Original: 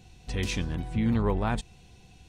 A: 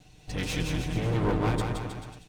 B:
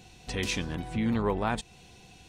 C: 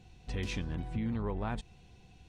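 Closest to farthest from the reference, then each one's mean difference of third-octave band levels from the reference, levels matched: C, B, A; 2.5, 3.5, 8.0 decibels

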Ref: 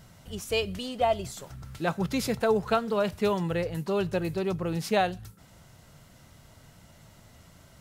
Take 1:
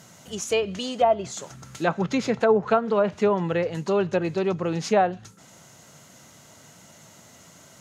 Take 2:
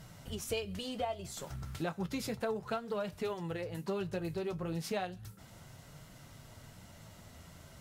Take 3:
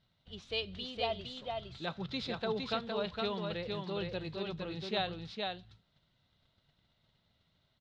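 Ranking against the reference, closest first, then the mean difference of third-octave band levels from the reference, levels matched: 1, 2, 3; 4.0, 5.5, 8.5 decibels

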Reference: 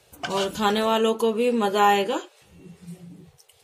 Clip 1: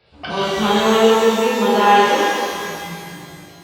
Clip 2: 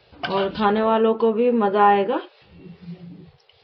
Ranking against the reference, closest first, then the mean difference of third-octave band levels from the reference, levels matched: 2, 1; 5.0, 10.0 decibels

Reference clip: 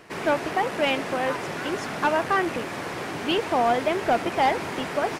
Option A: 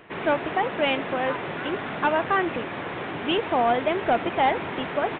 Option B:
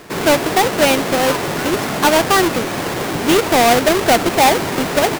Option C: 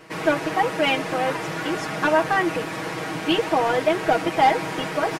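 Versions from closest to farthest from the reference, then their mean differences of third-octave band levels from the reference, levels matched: C, B, A; 1.5, 4.5, 6.0 decibels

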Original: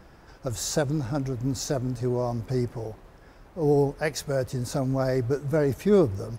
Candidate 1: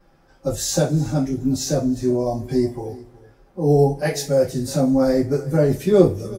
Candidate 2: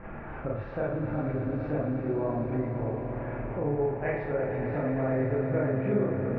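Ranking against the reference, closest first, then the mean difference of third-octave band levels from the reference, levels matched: 1, 2; 5.0, 11.0 decibels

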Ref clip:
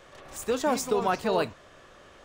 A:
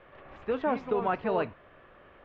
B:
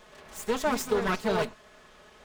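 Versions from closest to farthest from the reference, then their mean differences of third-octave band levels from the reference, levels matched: B, A; 2.5, 5.5 decibels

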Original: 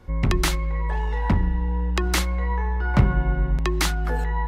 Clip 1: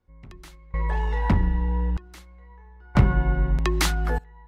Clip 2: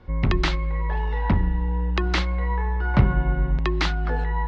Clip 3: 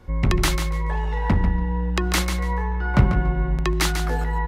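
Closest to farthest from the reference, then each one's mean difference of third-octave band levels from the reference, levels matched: 2, 3, 1; 2.0, 3.0, 8.5 decibels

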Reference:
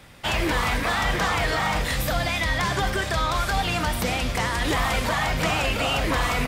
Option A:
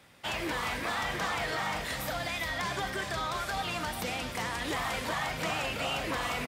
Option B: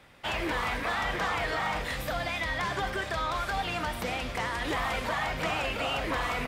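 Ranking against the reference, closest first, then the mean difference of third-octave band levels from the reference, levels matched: A, B; 1.5, 2.5 decibels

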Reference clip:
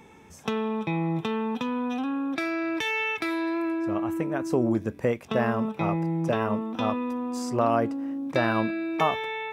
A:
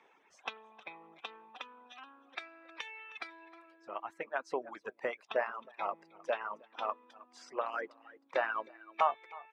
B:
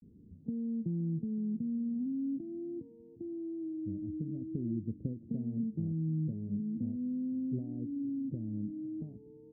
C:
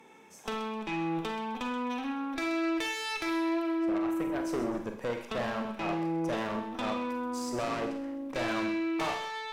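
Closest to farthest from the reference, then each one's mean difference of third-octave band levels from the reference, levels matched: C, A, B; 6.0, 9.0, 16.0 decibels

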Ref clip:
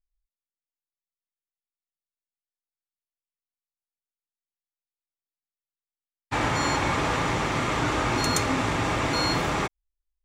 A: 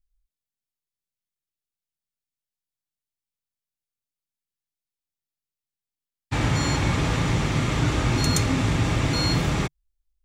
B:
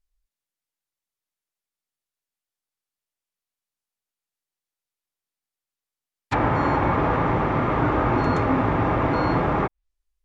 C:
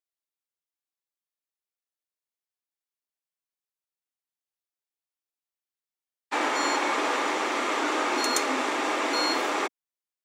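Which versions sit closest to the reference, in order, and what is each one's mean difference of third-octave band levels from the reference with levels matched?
A, C, B; 3.5, 6.5, 8.5 decibels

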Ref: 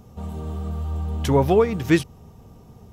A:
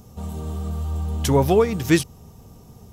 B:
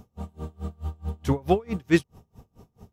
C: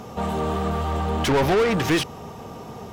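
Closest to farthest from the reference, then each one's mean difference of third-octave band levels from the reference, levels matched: A, B, C; 2.5, 7.5, 10.5 decibels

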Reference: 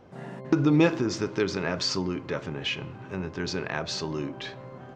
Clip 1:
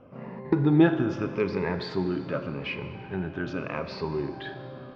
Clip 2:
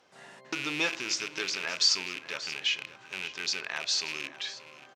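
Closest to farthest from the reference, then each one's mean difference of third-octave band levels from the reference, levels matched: 1, 2; 4.0, 10.5 decibels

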